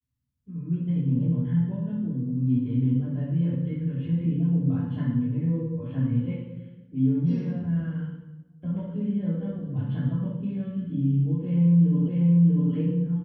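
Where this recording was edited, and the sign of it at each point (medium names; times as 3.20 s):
12.08 s: repeat of the last 0.64 s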